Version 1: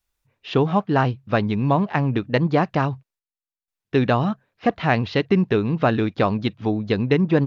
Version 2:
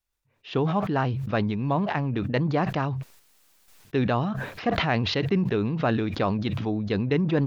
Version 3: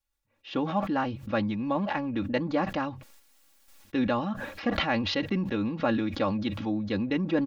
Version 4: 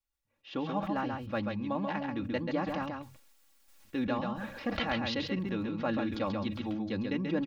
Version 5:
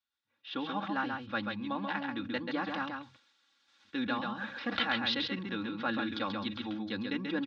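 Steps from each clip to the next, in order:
level that may fall only so fast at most 28 dB per second; level −6.5 dB
comb filter 3.6 ms, depth 76%; level −4 dB
single-tap delay 135 ms −4.5 dB; level −6 dB
loudspeaker in its box 160–5,600 Hz, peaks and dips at 160 Hz −10 dB, 400 Hz −6 dB, 610 Hz −8 dB, 1,500 Hz +8 dB, 3,600 Hz +9 dB

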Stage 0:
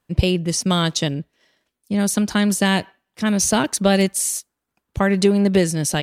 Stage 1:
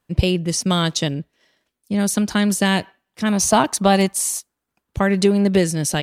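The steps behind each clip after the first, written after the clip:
gain on a spectral selection 0:03.29–0:04.42, 630–1,300 Hz +7 dB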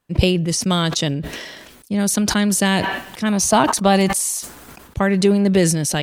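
level that may fall only so fast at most 39 dB per second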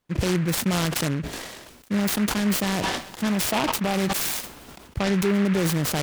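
brickwall limiter −11 dBFS, peak gain reduction 9.5 dB
short delay modulated by noise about 1,600 Hz, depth 0.11 ms
level −3 dB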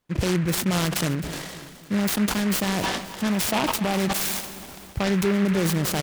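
repeating echo 264 ms, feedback 52%, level −15.5 dB

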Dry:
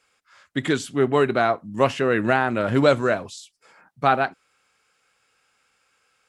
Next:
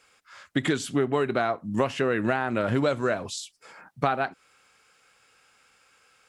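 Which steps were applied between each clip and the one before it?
downward compressor 8 to 1, threshold −26 dBFS, peak gain reduction 14.5 dB
level +5 dB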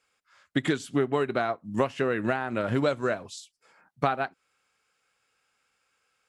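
expander for the loud parts 1.5 to 1, over −44 dBFS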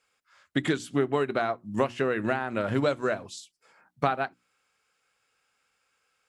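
mains-hum notches 60/120/180/240/300/360 Hz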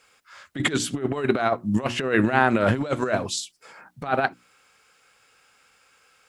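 compressor whose output falls as the input rises −30 dBFS, ratio −0.5
level +9 dB

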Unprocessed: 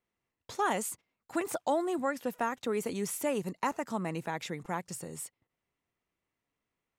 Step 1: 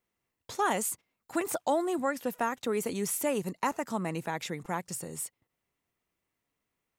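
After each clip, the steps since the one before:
high-shelf EQ 8,600 Hz +6 dB
level +1.5 dB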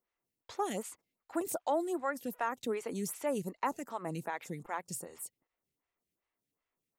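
phaser with staggered stages 2.6 Hz
level −2.5 dB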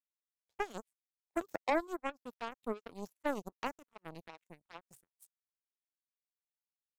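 phaser swept by the level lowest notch 160 Hz, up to 1,900 Hz, full sweep at −33 dBFS
power curve on the samples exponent 3
level +7.5 dB

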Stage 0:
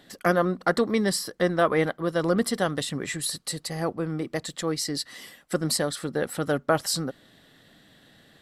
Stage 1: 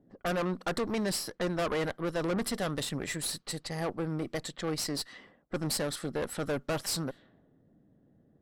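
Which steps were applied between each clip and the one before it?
tube saturation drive 27 dB, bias 0.7
low-pass that shuts in the quiet parts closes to 340 Hz, open at −31.5 dBFS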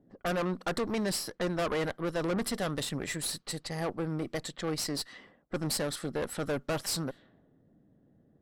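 no processing that can be heard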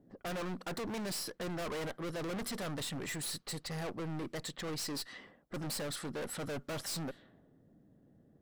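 hard clipping −37 dBFS, distortion −6 dB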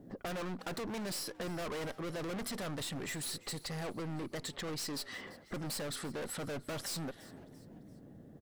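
downward compressor 6 to 1, threshold −50 dBFS, peak gain reduction 11 dB
echo with shifted repeats 341 ms, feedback 42%, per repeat +100 Hz, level −20 dB
level +10 dB

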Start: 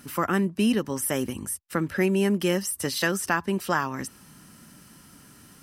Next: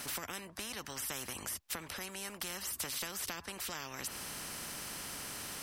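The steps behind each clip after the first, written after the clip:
high-shelf EQ 7,300 Hz −6 dB
downward compressor 2.5 to 1, threshold −36 dBFS, peak gain reduction 12 dB
every bin compressed towards the loudest bin 4 to 1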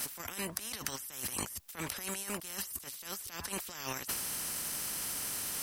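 compressor whose output falls as the input rises −47 dBFS, ratio −0.5
high-shelf EQ 6,800 Hz +11.5 dB
level +4.5 dB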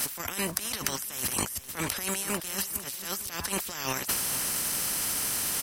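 repeating echo 452 ms, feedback 38%, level −13.5 dB
level +7.5 dB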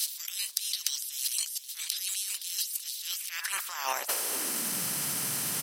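high-pass filter sweep 3,900 Hz → 140 Hz, 0:02.98–0:04.90
level −2 dB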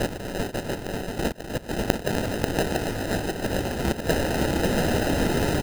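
gate with flip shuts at −16 dBFS, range −30 dB
decimation without filtering 39×
on a send: multi-tap delay 250/540/686 ms −10/−3.5/−5 dB
on the sum: level +6.5 dB

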